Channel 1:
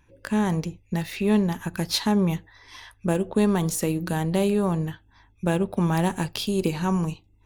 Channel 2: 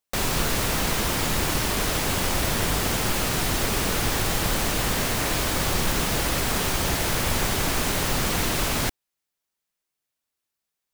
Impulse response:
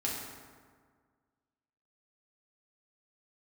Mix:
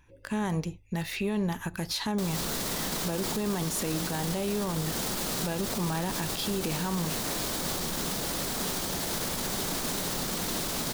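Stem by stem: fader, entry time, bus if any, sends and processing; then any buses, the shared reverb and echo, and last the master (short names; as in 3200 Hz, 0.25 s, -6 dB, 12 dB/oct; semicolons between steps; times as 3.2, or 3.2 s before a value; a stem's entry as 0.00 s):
+0.5 dB, 0.00 s, no send, dry
-7.5 dB, 2.05 s, no send, limiter -21 dBFS, peak gain reduction 10.5 dB; EQ curve 100 Hz 0 dB, 180 Hz +13 dB, 2600 Hz +2 dB, 3800 Hz +9 dB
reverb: off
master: bell 230 Hz -3.5 dB 2.4 oct; limiter -21 dBFS, peak gain reduction 10.5 dB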